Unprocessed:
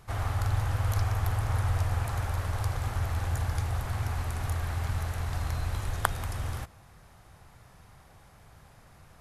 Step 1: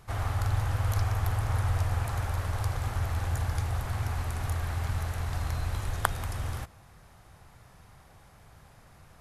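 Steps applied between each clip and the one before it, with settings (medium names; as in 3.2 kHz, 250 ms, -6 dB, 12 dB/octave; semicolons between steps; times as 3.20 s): no audible change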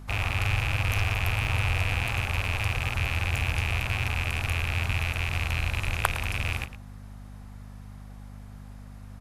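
rattle on loud lows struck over -34 dBFS, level -18 dBFS; hum 50 Hz, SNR 14 dB; echo from a far wall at 19 m, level -13 dB; trim +1 dB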